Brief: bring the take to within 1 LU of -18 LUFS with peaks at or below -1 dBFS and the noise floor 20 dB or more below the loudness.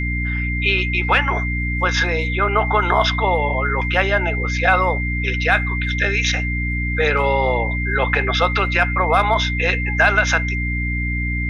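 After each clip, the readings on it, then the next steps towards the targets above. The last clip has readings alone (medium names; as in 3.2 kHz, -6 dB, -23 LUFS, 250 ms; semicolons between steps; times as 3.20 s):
hum 60 Hz; highest harmonic 300 Hz; hum level -20 dBFS; steady tone 2.1 kHz; tone level -24 dBFS; loudness -18.5 LUFS; peak level -3.0 dBFS; loudness target -18.0 LUFS
-> hum notches 60/120/180/240/300 Hz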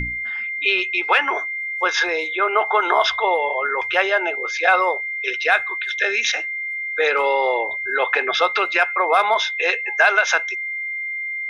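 hum not found; steady tone 2.1 kHz; tone level -24 dBFS
-> band-stop 2.1 kHz, Q 30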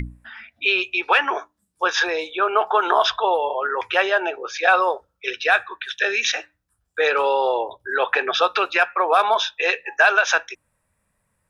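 steady tone not found; loudness -20.0 LUFS; peak level -5.0 dBFS; loudness target -18.0 LUFS
-> trim +2 dB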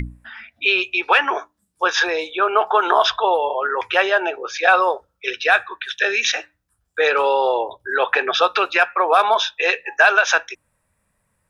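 loudness -18.0 LUFS; peak level -3.0 dBFS; noise floor -71 dBFS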